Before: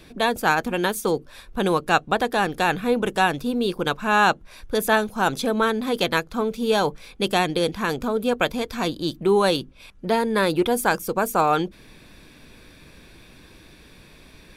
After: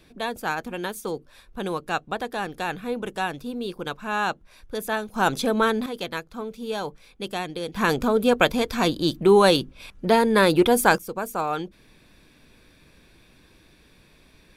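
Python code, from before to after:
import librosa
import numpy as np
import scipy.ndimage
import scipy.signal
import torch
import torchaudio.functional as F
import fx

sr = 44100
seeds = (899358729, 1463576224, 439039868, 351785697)

y = fx.gain(x, sr, db=fx.steps((0.0, -7.5), (5.14, 0.0), (5.86, -9.0), (7.75, 3.0), (10.98, -7.0)))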